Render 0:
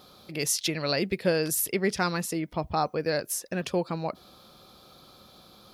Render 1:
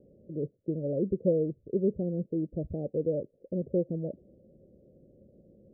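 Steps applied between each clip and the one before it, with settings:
Butterworth low-pass 580 Hz 72 dB per octave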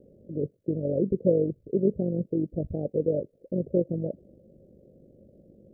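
amplitude modulation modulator 48 Hz, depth 40%
level +6 dB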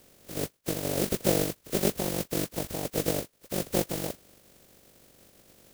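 compressing power law on the bin magnitudes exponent 0.26
level −2.5 dB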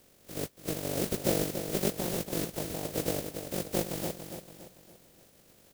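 repeating echo 284 ms, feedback 43%, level −8 dB
level −3.5 dB

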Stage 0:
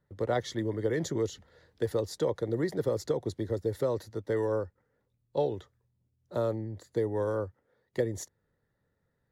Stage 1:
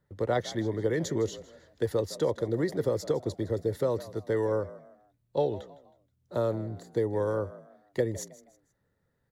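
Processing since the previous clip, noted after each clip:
echo with shifted repeats 159 ms, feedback 34%, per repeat +64 Hz, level −17.5 dB
level +1.5 dB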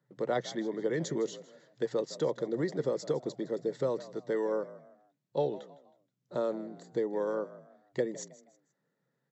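brick-wall band-pass 120–7,900 Hz
level −3 dB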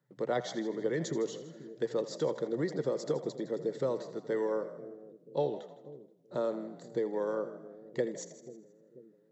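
echo with a time of its own for lows and highs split 450 Hz, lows 487 ms, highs 81 ms, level −13.5 dB
level −1 dB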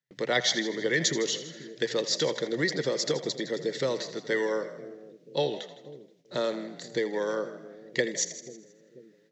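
noise gate with hold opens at −57 dBFS
flat-topped bell 3,400 Hz +15.5 dB 2.3 octaves
level +3 dB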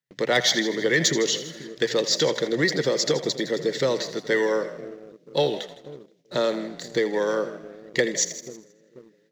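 leveller curve on the samples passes 1
level +2 dB

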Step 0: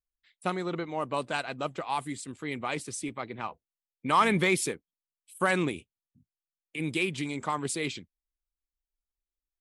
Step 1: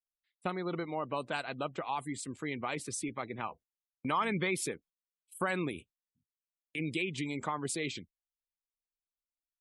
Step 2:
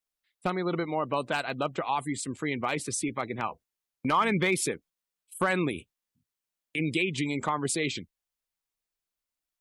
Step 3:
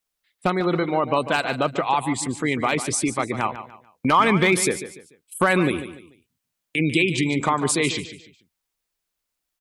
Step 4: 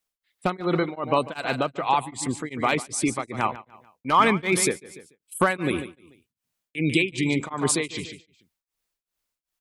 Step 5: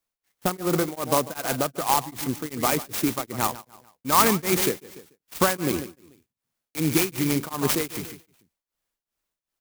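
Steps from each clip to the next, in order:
gate on every frequency bin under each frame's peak −30 dB strong; noise gate −52 dBFS, range −18 dB; downward compressor 2 to 1, threshold −34 dBFS, peak gain reduction 9 dB
gain into a clipping stage and back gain 23 dB; level +6.5 dB
repeating echo 146 ms, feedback 32%, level −12 dB; level +7.5 dB
tremolo along a rectified sine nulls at 2.6 Hz
converter with an unsteady clock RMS 0.092 ms

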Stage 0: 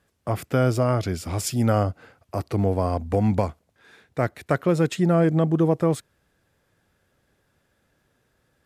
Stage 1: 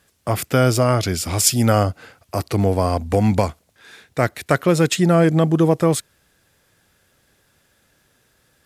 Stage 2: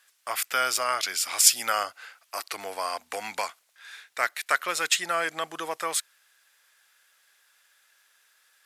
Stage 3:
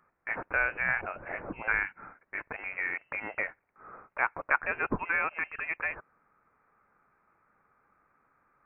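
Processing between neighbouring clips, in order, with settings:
high-shelf EQ 2,200 Hz +10 dB; level +4 dB
Chebyshev high-pass filter 1,400 Hz, order 2
voice inversion scrambler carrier 2,900 Hz; level −2 dB

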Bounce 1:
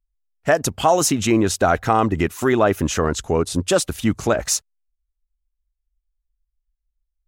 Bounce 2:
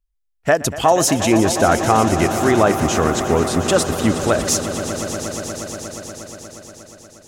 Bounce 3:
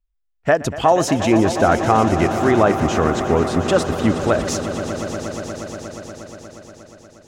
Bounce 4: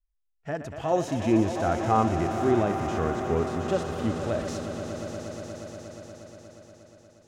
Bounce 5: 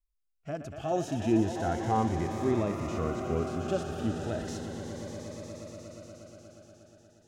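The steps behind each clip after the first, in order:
echo that builds up and dies away 119 ms, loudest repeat 5, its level −13.5 dB; level +1.5 dB
parametric band 12,000 Hz −14 dB 1.7 octaves
harmonic and percussive parts rebalanced percussive −16 dB; level −5 dB
phaser whose notches keep moving one way rising 0.34 Hz; level −3 dB

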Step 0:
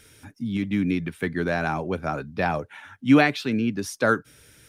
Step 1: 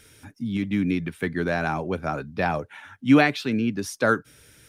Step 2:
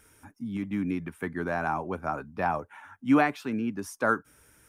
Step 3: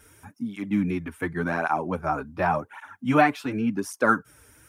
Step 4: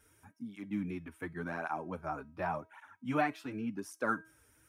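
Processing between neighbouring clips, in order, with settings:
no processing that can be heard
octave-band graphic EQ 125/500/1,000/2,000/4,000 Hz −7/−4/+7/−3/−12 dB; level −3.5 dB
through-zero flanger with one copy inverted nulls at 0.89 Hz, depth 6.1 ms; level +7.5 dB
tuned comb filter 320 Hz, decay 0.44 s, harmonics all, mix 50%; level −6.5 dB

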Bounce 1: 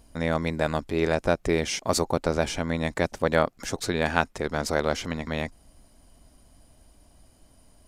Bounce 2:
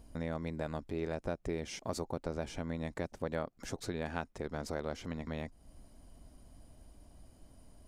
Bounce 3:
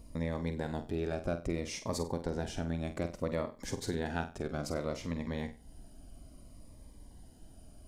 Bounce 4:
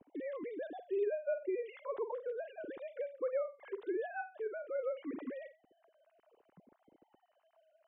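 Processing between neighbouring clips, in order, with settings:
tilt shelving filter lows +3.5 dB, about 820 Hz; downward compressor 2 to 1, threshold −39 dBFS, peak gain reduction 13 dB; level −3.5 dB
on a send: flutter between parallel walls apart 8.1 metres, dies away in 0.31 s; on the sum: phaser whose notches keep moving one way falling 0.61 Hz; level +3.5 dB
three sine waves on the formant tracks; high-shelf EQ 2,000 Hz −11.5 dB; level −2.5 dB

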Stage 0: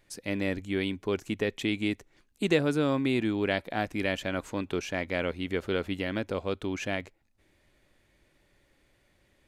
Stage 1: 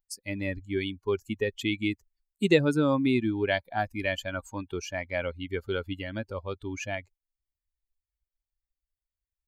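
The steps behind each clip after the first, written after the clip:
spectral dynamics exaggerated over time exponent 2
level +5.5 dB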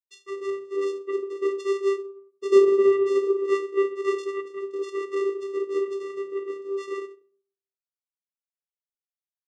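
centre clipping without the shift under −46.5 dBFS
rectangular room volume 280 cubic metres, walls furnished, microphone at 2.1 metres
channel vocoder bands 4, square 393 Hz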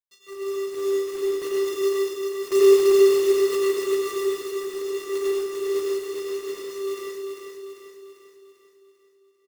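one scale factor per block 3 bits
on a send: repeating echo 395 ms, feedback 52%, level −5 dB
on the sum: dense smooth reverb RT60 0.77 s, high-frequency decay 0.85×, pre-delay 80 ms, DRR −2.5 dB
level −6 dB

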